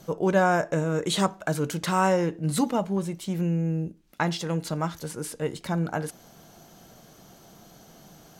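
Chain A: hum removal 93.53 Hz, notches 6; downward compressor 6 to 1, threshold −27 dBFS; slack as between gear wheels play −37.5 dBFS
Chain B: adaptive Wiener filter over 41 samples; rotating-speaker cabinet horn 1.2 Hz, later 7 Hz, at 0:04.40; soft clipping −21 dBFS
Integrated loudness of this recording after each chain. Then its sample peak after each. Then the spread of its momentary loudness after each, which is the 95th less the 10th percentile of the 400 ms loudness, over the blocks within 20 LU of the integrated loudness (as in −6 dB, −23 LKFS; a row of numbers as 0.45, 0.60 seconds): −33.0, −32.0 LKFS; −14.0, −21.0 dBFS; 5, 9 LU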